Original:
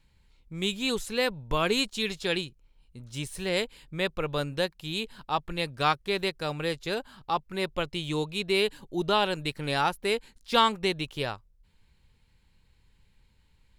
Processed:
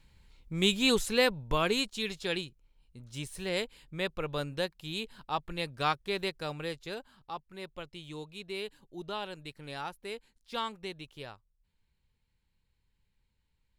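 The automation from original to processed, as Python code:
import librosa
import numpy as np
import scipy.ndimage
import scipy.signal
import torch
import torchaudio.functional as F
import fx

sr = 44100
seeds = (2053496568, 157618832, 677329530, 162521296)

y = fx.gain(x, sr, db=fx.line((1.04, 3.0), (1.87, -4.5), (6.38, -4.5), (7.47, -13.0)))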